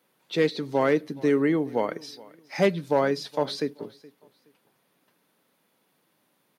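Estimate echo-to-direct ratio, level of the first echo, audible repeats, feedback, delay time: −21.5 dB, −22.0 dB, 2, 26%, 421 ms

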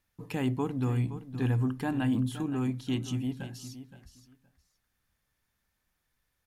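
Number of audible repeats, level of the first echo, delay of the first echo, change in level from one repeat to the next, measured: 2, −13.0 dB, 519 ms, −15.0 dB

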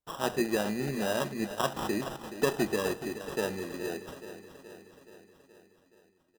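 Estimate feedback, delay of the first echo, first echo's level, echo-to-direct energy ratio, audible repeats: 60%, 424 ms, −12.0 dB, −10.0 dB, 6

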